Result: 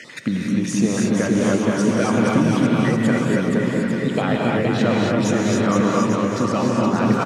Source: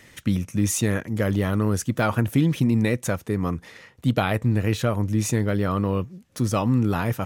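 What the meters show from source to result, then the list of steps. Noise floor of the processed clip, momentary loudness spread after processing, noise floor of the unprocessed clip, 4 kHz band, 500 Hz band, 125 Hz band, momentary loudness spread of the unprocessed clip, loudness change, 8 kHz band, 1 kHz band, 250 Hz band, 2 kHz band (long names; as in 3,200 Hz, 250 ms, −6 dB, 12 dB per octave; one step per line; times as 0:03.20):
−26 dBFS, 4 LU, −53 dBFS, +5.0 dB, +6.5 dB, −0.5 dB, 5 LU, +4.5 dB, +1.0 dB, +6.0 dB, +6.5 dB, +5.5 dB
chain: time-frequency cells dropped at random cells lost 21%
high-pass filter 150 Hz 24 dB per octave
downward compressor, threshold −25 dBFS, peak gain reduction 9 dB
high-frequency loss of the air 91 metres
bouncing-ball delay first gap 470 ms, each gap 0.8×, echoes 5
reverb whose tail is shaped and stops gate 310 ms rising, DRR −2 dB
one half of a high-frequency compander encoder only
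level +6.5 dB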